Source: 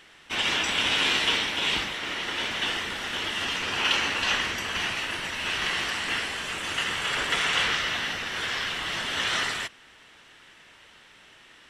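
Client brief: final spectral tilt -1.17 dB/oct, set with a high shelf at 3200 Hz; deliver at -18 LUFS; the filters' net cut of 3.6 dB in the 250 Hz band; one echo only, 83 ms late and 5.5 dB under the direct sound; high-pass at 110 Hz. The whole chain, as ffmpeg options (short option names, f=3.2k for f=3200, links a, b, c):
-af "highpass=110,equalizer=f=250:t=o:g=-4.5,highshelf=f=3.2k:g=-6.5,aecho=1:1:83:0.531,volume=9.5dB"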